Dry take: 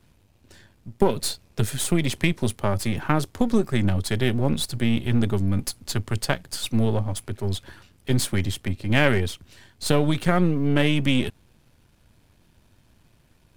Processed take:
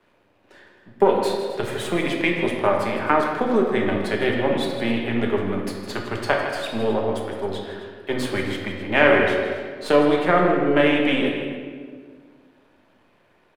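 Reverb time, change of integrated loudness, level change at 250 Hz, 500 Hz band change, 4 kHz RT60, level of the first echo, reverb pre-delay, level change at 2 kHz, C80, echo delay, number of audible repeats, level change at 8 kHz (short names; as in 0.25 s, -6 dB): 1.8 s, +2.5 dB, +0.5 dB, +7.5 dB, 1.1 s, -11.5 dB, 5 ms, +6.0 dB, 3.5 dB, 0.159 s, 1, -10.5 dB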